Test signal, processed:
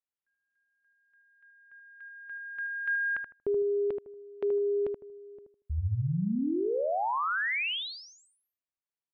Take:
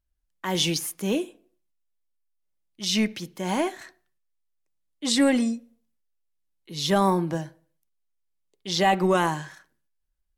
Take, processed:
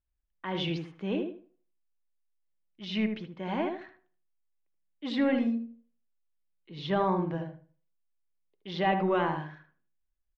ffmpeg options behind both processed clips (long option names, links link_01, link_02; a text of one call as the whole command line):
ffmpeg -i in.wav -filter_complex "[0:a]lowpass=frequency=3200:width=0.5412,lowpass=frequency=3200:width=1.3066,asplit=2[link_01][link_02];[link_02]adelay=78,lowpass=frequency=1100:poles=1,volume=-4dB,asplit=2[link_03][link_04];[link_04]adelay=78,lowpass=frequency=1100:poles=1,volume=0.28,asplit=2[link_05][link_06];[link_06]adelay=78,lowpass=frequency=1100:poles=1,volume=0.28,asplit=2[link_07][link_08];[link_08]adelay=78,lowpass=frequency=1100:poles=1,volume=0.28[link_09];[link_03][link_05][link_07][link_09]amix=inputs=4:normalize=0[link_10];[link_01][link_10]amix=inputs=2:normalize=0,volume=-6.5dB" out.wav